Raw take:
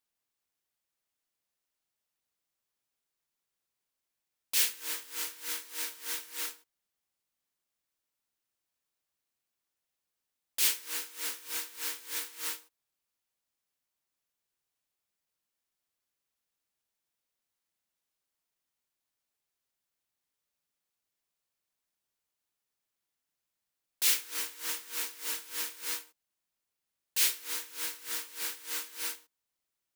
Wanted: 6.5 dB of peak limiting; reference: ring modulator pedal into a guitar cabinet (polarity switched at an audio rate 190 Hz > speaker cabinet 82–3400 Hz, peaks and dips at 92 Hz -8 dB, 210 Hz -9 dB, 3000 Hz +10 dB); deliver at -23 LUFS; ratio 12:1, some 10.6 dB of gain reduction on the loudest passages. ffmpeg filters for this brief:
-af "acompressor=threshold=-32dB:ratio=12,alimiter=level_in=3dB:limit=-24dB:level=0:latency=1,volume=-3dB,aeval=exprs='val(0)*sgn(sin(2*PI*190*n/s))':c=same,highpass=82,equalizer=f=92:t=q:w=4:g=-8,equalizer=f=210:t=q:w=4:g=-9,equalizer=f=3k:t=q:w=4:g=10,lowpass=f=3.4k:w=0.5412,lowpass=f=3.4k:w=1.3066,volume=20dB"

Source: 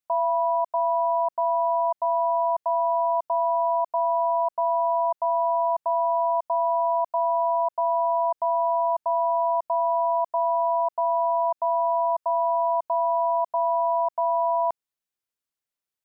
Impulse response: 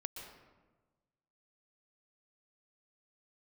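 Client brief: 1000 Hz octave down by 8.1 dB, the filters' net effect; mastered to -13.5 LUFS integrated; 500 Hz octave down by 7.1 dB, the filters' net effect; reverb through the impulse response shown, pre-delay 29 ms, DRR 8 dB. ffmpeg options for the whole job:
-filter_complex "[0:a]equalizer=f=500:t=o:g=-7,equalizer=f=1k:t=o:g=-7,asplit=2[a][b];[1:a]atrim=start_sample=2205,adelay=29[c];[b][c]afir=irnorm=-1:irlink=0,volume=-6dB[d];[a][d]amix=inputs=2:normalize=0,volume=19.5dB"

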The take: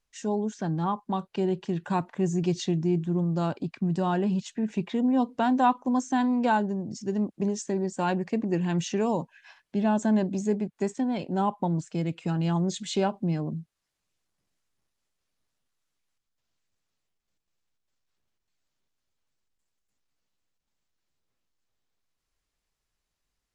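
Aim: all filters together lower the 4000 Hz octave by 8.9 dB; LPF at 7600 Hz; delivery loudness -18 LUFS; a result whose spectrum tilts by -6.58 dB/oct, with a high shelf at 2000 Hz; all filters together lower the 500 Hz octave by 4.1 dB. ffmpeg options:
-af "lowpass=7.6k,equalizer=f=500:t=o:g=-5.5,highshelf=f=2k:g=-5,equalizer=f=4k:t=o:g=-6.5,volume=11.5dB"

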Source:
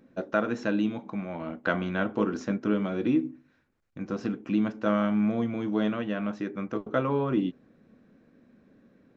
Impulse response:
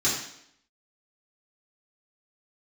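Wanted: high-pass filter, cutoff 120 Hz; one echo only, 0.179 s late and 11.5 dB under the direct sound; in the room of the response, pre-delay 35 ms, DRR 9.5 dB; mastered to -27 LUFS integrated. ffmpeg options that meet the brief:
-filter_complex "[0:a]highpass=120,aecho=1:1:179:0.266,asplit=2[a][b];[1:a]atrim=start_sample=2205,adelay=35[c];[b][c]afir=irnorm=-1:irlink=0,volume=-21.5dB[d];[a][d]amix=inputs=2:normalize=0,volume=1.5dB"

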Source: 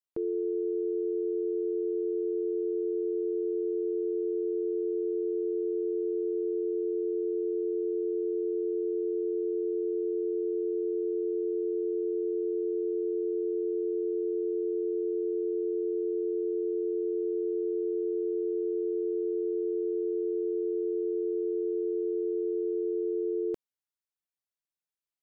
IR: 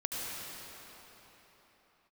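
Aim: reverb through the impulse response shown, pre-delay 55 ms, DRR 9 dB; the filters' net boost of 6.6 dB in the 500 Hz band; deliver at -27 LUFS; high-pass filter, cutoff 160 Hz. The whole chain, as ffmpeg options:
-filter_complex "[0:a]highpass=160,equalizer=f=500:t=o:g=8.5,asplit=2[a][b];[1:a]atrim=start_sample=2205,adelay=55[c];[b][c]afir=irnorm=-1:irlink=0,volume=-14dB[d];[a][d]amix=inputs=2:normalize=0,volume=-2.5dB"

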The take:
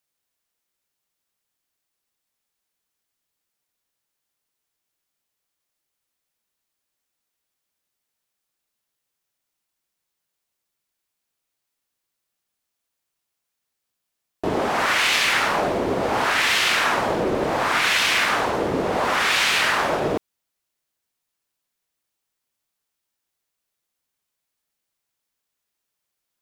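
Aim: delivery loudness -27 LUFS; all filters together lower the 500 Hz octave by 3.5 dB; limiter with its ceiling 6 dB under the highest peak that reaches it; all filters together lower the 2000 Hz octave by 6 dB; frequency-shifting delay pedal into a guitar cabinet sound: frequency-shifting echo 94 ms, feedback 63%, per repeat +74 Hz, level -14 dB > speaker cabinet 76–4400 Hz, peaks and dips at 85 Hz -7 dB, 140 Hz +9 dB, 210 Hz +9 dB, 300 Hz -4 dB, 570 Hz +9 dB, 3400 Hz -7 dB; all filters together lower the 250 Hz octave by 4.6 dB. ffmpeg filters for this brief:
-filter_complex "[0:a]equalizer=f=250:t=o:g=-8,equalizer=f=500:t=o:g=-8.5,equalizer=f=2k:t=o:g=-6.5,alimiter=limit=-17dB:level=0:latency=1,asplit=8[a][b][c][d][e][f][g][h];[b]adelay=94,afreqshift=74,volume=-14dB[i];[c]adelay=188,afreqshift=148,volume=-18dB[j];[d]adelay=282,afreqshift=222,volume=-22dB[k];[e]adelay=376,afreqshift=296,volume=-26dB[l];[f]adelay=470,afreqshift=370,volume=-30.1dB[m];[g]adelay=564,afreqshift=444,volume=-34.1dB[n];[h]adelay=658,afreqshift=518,volume=-38.1dB[o];[a][i][j][k][l][m][n][o]amix=inputs=8:normalize=0,highpass=76,equalizer=f=85:t=q:w=4:g=-7,equalizer=f=140:t=q:w=4:g=9,equalizer=f=210:t=q:w=4:g=9,equalizer=f=300:t=q:w=4:g=-4,equalizer=f=570:t=q:w=4:g=9,equalizer=f=3.4k:t=q:w=4:g=-7,lowpass=f=4.4k:w=0.5412,lowpass=f=4.4k:w=1.3066,volume=-1dB"

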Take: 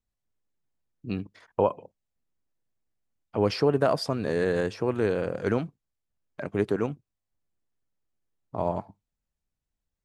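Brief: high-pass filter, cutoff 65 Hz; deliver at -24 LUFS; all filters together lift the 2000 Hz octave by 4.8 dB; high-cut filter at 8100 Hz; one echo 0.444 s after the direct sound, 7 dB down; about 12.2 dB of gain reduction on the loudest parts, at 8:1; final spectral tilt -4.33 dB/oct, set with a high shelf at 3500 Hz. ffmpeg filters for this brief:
-af "highpass=65,lowpass=8.1k,equalizer=f=2k:t=o:g=4.5,highshelf=f=3.5k:g=7,acompressor=threshold=-30dB:ratio=8,aecho=1:1:444:0.447,volume=13dB"

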